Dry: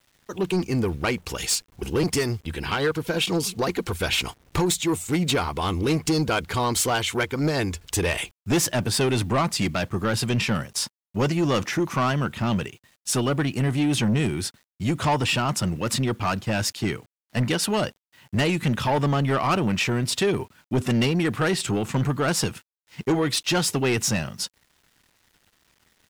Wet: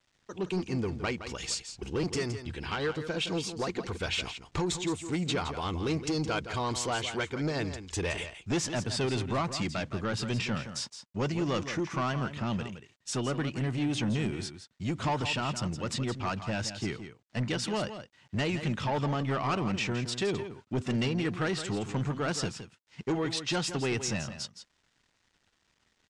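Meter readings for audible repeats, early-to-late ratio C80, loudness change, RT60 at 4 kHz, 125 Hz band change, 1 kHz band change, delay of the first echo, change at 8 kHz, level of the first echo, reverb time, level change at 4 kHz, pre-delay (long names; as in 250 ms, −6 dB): 1, no reverb audible, −8.0 dB, no reverb audible, −7.5 dB, −7.5 dB, 167 ms, −10.5 dB, −10.5 dB, no reverb audible, −7.5 dB, no reverb audible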